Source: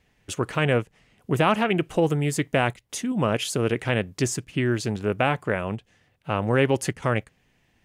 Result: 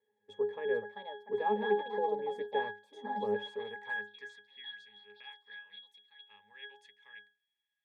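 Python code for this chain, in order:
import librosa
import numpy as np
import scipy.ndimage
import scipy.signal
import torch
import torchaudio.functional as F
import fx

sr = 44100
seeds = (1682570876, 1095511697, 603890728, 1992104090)

y = fx.filter_sweep_highpass(x, sr, from_hz=470.0, to_hz=2700.0, start_s=3.29, end_s=4.85, q=2.0)
y = fx.echo_pitch(y, sr, ms=508, semitones=4, count=2, db_per_echo=-6.0)
y = fx.octave_resonator(y, sr, note='G#', decay_s=0.31)
y = F.gain(torch.from_numpy(y), 4.0).numpy()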